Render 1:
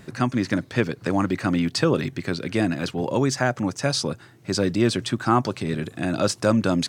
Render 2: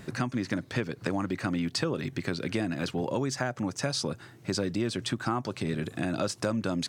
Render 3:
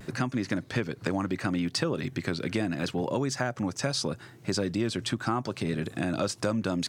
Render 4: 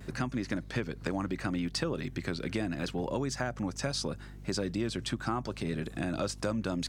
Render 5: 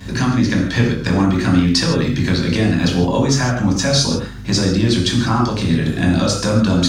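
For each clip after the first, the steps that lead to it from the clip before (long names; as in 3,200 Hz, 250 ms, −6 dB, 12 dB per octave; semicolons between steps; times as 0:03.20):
downward compressor 4 to 1, threshold −27 dBFS, peak gain reduction 12 dB
pitch vibrato 0.75 Hz 33 cents; level +1 dB
mains hum 50 Hz, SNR 13 dB; level −4 dB
convolution reverb, pre-delay 3 ms, DRR −2 dB; level +8 dB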